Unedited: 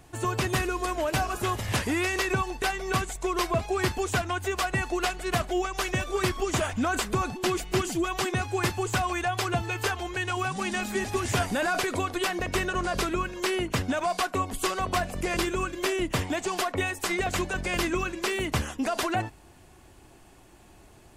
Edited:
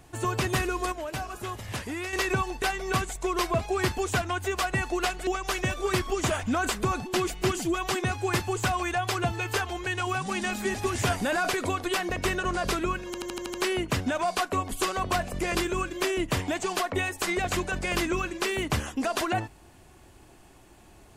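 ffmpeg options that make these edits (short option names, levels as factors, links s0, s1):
-filter_complex "[0:a]asplit=10[s0][s1][s2][s3][s4][s5][s6][s7][s8][s9];[s0]atrim=end=0.922[s10];[s1]atrim=start=0.918:end=2.132,asetpts=PTS-STARTPTS,volume=0.447[s11];[s2]atrim=start=2.128:end=5.272[s12];[s3]atrim=start=5.568:end=13.442[s13];[s4]atrim=start=13.358:end=13.442[s14];[s5]atrim=start=13.358:end=13.442[s15];[s6]atrim=start=13.358:end=13.442[s16];[s7]atrim=start=13.358:end=13.442[s17];[s8]atrim=start=13.358:end=13.442[s18];[s9]atrim=start=13.358[s19];[s10][s11]acrossfade=d=0.004:c1=hsin:c2=hsin[s20];[s20][s12]acrossfade=d=0.004:c1=hsin:c2=hsin[s21];[s21][s13]acrossfade=d=0.004:c1=hsin:c2=hsin[s22];[s22][s14]acrossfade=d=0.004:c1=hsin:c2=hsin[s23];[s23][s15]acrossfade=d=0.004:c1=hsin:c2=hsin[s24];[s24][s16]acrossfade=d=0.004:c1=hsin:c2=hsin[s25];[s25][s17]acrossfade=d=0.004:c1=hsin:c2=hsin[s26];[s26][s18]acrossfade=d=0.004:c1=hsin:c2=hsin[s27];[s27][s19]acrossfade=d=0.004:c1=hsin:c2=hsin"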